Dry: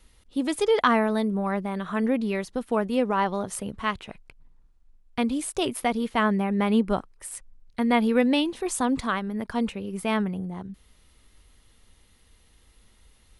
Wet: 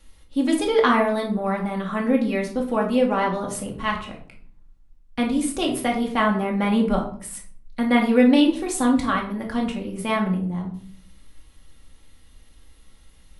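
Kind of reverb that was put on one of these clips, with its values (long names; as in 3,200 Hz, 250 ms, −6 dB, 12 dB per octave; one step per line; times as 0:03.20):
rectangular room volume 540 cubic metres, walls furnished, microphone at 2.3 metres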